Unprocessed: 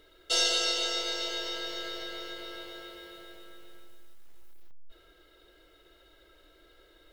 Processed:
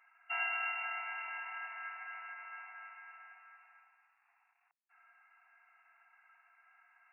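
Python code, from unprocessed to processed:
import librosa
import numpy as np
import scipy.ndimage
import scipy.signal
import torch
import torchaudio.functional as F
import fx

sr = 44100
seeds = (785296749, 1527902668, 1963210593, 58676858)

y = fx.brickwall_bandpass(x, sr, low_hz=690.0, high_hz=2800.0)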